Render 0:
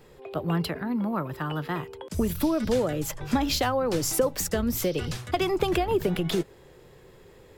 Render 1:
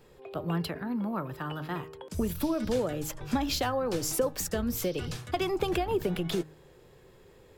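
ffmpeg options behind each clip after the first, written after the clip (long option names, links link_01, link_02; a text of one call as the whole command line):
ffmpeg -i in.wav -af "bandreject=frequency=2000:width=24,bandreject=frequency=155.3:width_type=h:width=4,bandreject=frequency=310.6:width_type=h:width=4,bandreject=frequency=465.9:width_type=h:width=4,bandreject=frequency=621.2:width_type=h:width=4,bandreject=frequency=776.5:width_type=h:width=4,bandreject=frequency=931.8:width_type=h:width=4,bandreject=frequency=1087.1:width_type=h:width=4,bandreject=frequency=1242.4:width_type=h:width=4,bandreject=frequency=1397.7:width_type=h:width=4,bandreject=frequency=1553:width_type=h:width=4,bandreject=frequency=1708.3:width_type=h:width=4,bandreject=frequency=1863.6:width_type=h:width=4,volume=-4dB" out.wav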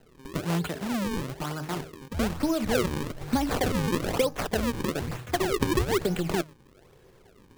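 ffmpeg -i in.wav -filter_complex "[0:a]asplit=2[link_01][link_02];[link_02]aeval=exprs='sgn(val(0))*max(abs(val(0))-0.00299,0)':channel_layout=same,volume=-7.5dB[link_03];[link_01][link_03]amix=inputs=2:normalize=0,acrusher=samples=37:mix=1:aa=0.000001:lfo=1:lforange=59.2:lforate=1.1" out.wav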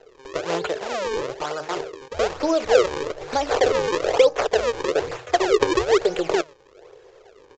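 ffmpeg -i in.wav -af "lowshelf=frequency=310:width_type=q:width=3:gain=-13,aphaser=in_gain=1:out_gain=1:delay=1.6:decay=0.24:speed=1.6:type=sinusoidal,aresample=16000,aresample=44100,volume=5dB" out.wav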